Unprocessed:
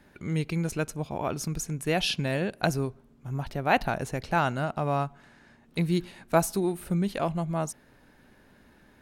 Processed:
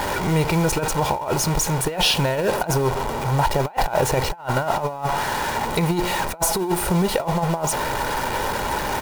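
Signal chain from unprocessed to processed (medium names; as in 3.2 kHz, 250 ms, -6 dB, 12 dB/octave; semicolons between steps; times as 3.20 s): jump at every zero crossing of -30.5 dBFS; on a send at -12.5 dB: reverberation RT60 0.50 s, pre-delay 3 ms; on the sum: bit crusher 7-bit; comb 2.1 ms, depth 46%; in parallel at -4.5 dB: saturation -20 dBFS, distortion -14 dB; on the sum: peaking EQ 830 Hz +13 dB 1 oct; compressor with a negative ratio -20 dBFS, ratio -0.5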